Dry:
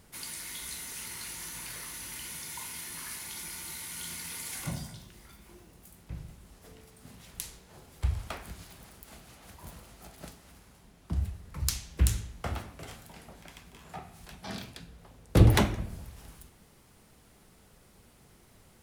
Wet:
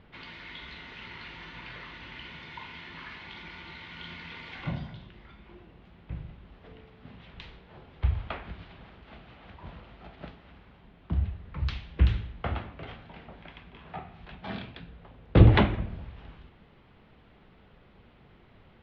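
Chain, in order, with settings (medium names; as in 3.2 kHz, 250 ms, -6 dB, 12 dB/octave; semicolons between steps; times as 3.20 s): steep low-pass 3.5 kHz 36 dB/octave; trim +3 dB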